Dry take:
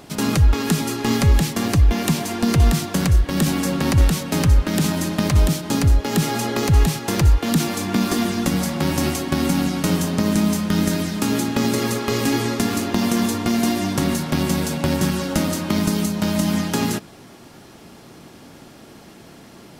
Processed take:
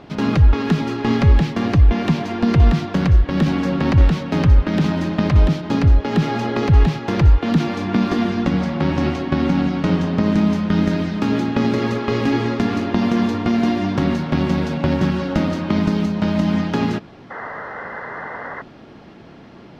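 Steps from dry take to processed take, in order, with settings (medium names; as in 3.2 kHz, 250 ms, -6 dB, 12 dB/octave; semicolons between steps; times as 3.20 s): 8.42–10.23 s: treble shelf 11 kHz -11.5 dB; 17.30–18.62 s: painted sound noise 390–2100 Hz -32 dBFS; distance through air 250 m; trim +2.5 dB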